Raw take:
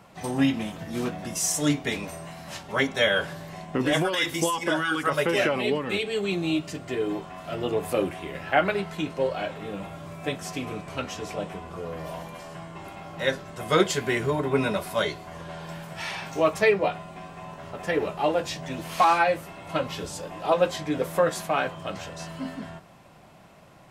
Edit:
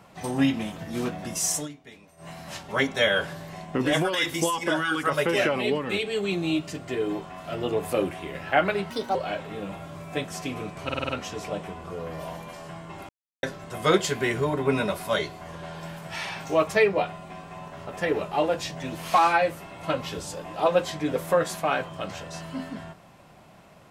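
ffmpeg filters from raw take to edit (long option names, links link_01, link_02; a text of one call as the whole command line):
ffmpeg -i in.wav -filter_complex "[0:a]asplit=12[link_01][link_02][link_03][link_04][link_05][link_06][link_07][link_08][link_09][link_10][link_11][link_12];[link_01]atrim=end=1.68,asetpts=PTS-STARTPTS,afade=type=out:start_time=1.56:duration=0.12:silence=0.112202[link_13];[link_02]atrim=start=1.68:end=2.17,asetpts=PTS-STARTPTS,volume=-19dB[link_14];[link_03]atrim=start=2.17:end=8.904,asetpts=PTS-STARTPTS,afade=type=in:duration=0.12:silence=0.112202[link_15];[link_04]atrim=start=8.9:end=9.26,asetpts=PTS-STARTPTS,asetrate=63504,aresample=44100[link_16];[link_05]atrim=start=9.256:end=11.002[link_17];[link_06]atrim=start=10.948:end=11.002[link_18];[link_07]atrim=start=10.948:end=11.002[link_19];[link_08]atrim=start=10.948:end=11.002[link_20];[link_09]atrim=start=10.948:end=11.002[link_21];[link_10]atrim=start=10.948:end=12.95,asetpts=PTS-STARTPTS,afade=type=out:start_time=1.998:duration=0.004:curve=hsin[link_22];[link_11]atrim=start=12.95:end=13.29,asetpts=PTS-STARTPTS,volume=0[link_23];[link_12]atrim=start=13.29,asetpts=PTS-STARTPTS,afade=type=in:duration=0.004:curve=hsin[link_24];[link_13][link_14][link_15]concat=n=3:v=0:a=1[link_25];[link_25][link_16]acrossfade=duration=0.004:curve1=hsin:curve2=hsin[link_26];[link_26][link_17]acrossfade=duration=0.004:curve1=hsin:curve2=hsin[link_27];[link_27][link_18]acrossfade=duration=0.004:curve1=hsin:curve2=hsin[link_28];[link_28][link_19]acrossfade=duration=0.004:curve1=hsin:curve2=hsin[link_29];[link_29][link_20]acrossfade=duration=0.004:curve1=hsin:curve2=hsin[link_30];[link_30][link_21]acrossfade=duration=0.004:curve1=hsin:curve2=hsin[link_31];[link_22][link_23][link_24]concat=n=3:v=0:a=1[link_32];[link_31][link_32]acrossfade=duration=0.004:curve1=hsin:curve2=hsin" out.wav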